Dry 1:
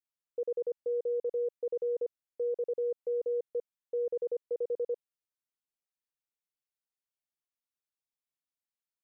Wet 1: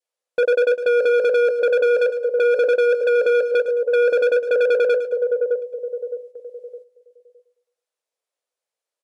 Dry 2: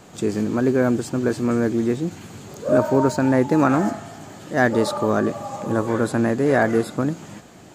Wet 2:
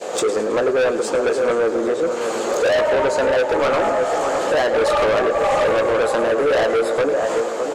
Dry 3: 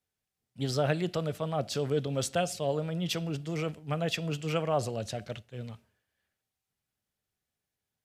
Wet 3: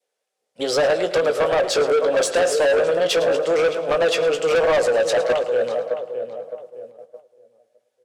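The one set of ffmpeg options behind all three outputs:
ffmpeg -i in.wav -filter_complex "[0:a]acompressor=threshold=-31dB:ratio=4,asplit=2[link_01][link_02];[link_02]adelay=613,lowpass=frequency=1500:poles=1,volume=-9dB,asplit=2[link_03][link_04];[link_04]adelay=613,lowpass=frequency=1500:poles=1,volume=0.38,asplit=2[link_05][link_06];[link_06]adelay=613,lowpass=frequency=1500:poles=1,volume=0.38,asplit=2[link_07][link_08];[link_08]adelay=613,lowpass=frequency=1500:poles=1,volume=0.38[link_09];[link_03][link_05][link_07][link_09]amix=inputs=4:normalize=0[link_10];[link_01][link_10]amix=inputs=2:normalize=0,adynamicequalizer=threshold=0.00178:dfrequency=1200:dqfactor=2.1:tfrequency=1200:tqfactor=2.1:attack=5:release=100:ratio=0.375:range=3.5:mode=boostabove:tftype=bell,highpass=frequency=510:width_type=q:width=4.9,asplit=2[link_11][link_12];[link_12]adelay=18,volume=-9dB[link_13];[link_11][link_13]amix=inputs=2:normalize=0,asoftclip=type=hard:threshold=-26.5dB,lowpass=frequency=11000:width=0.5412,lowpass=frequency=11000:width=1.3066,asplit=2[link_14][link_15];[link_15]aecho=0:1:108|216|324|432:0.2|0.0898|0.0404|0.0182[link_16];[link_14][link_16]amix=inputs=2:normalize=0,asoftclip=type=tanh:threshold=-26.5dB,acontrast=53,agate=range=-7dB:threshold=-48dB:ratio=16:detection=peak,volume=8dB" out.wav

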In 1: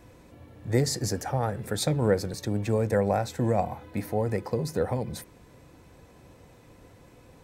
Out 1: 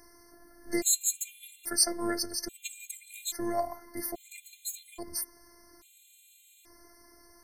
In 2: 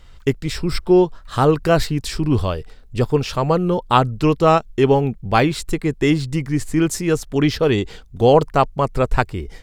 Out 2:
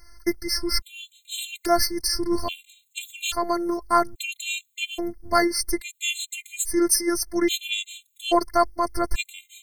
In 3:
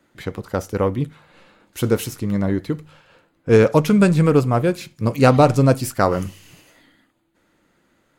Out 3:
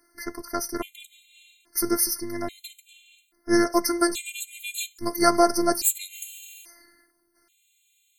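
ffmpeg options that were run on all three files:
ffmpeg -i in.wav -af "crystalizer=i=6:c=0,afftfilt=real='hypot(re,im)*cos(PI*b)':imag='0':win_size=512:overlap=0.75,afftfilt=real='re*gt(sin(2*PI*0.6*pts/sr)*(1-2*mod(floor(b*sr/1024/2100),2)),0)':imag='im*gt(sin(2*PI*0.6*pts/sr)*(1-2*mod(floor(b*sr/1024/2100),2)),0)':win_size=1024:overlap=0.75,volume=-2.5dB" out.wav

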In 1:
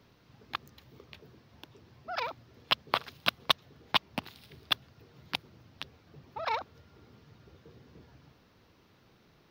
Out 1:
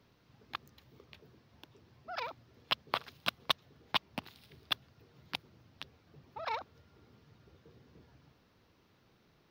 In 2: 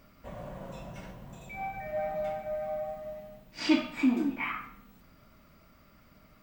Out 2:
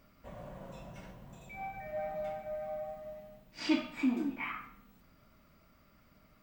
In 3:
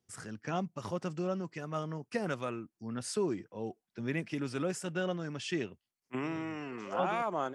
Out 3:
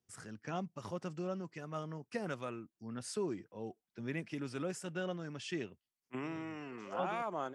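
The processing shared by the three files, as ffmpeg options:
ffmpeg -i in.wav -af "asoftclip=type=hard:threshold=-9dB,volume=-5dB" out.wav

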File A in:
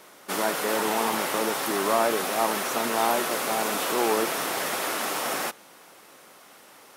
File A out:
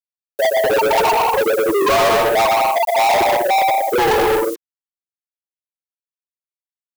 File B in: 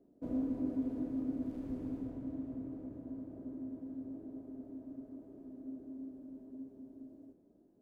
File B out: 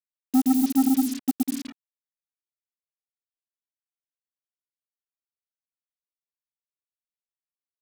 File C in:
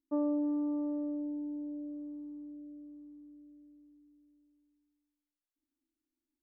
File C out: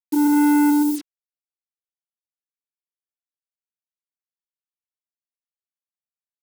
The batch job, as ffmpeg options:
ffmpeg -i in.wav -filter_complex "[0:a]bandreject=frequency=60:width_type=h:width=6,bandreject=frequency=120:width_type=h:width=6,bandreject=frequency=180:width_type=h:width=6,bandreject=frequency=240:width_type=h:width=6,bandreject=frequency=300:width_type=h:width=6,bandreject=frequency=360:width_type=h:width=6,bandreject=frequency=420:width_type=h:width=6,afftfilt=real='re*gte(hypot(re,im),0.282)':imag='im*gte(hypot(re,im),0.282)':win_size=1024:overlap=0.75,acompressor=threshold=-33dB:ratio=2,aecho=1:1:120|198|248.7|281.7|303.1:0.631|0.398|0.251|0.158|0.1,asplit=2[link_01][link_02];[link_02]highpass=frequency=720:poles=1,volume=30dB,asoftclip=type=tanh:threshold=-17.5dB[link_03];[link_01][link_03]amix=inputs=2:normalize=0,lowpass=frequency=1100:poles=1,volume=-6dB,acrusher=bits=8:mix=0:aa=0.5,crystalizer=i=8.5:c=0,volume=8dB" out.wav

